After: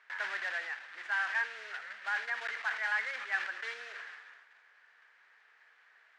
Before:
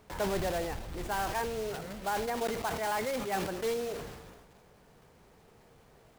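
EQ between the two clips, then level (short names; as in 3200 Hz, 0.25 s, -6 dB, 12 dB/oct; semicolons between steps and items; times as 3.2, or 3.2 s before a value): resonant high-pass 1700 Hz, resonance Q 4.5; LPF 3500 Hz 6 dB/oct; air absorption 97 m; 0.0 dB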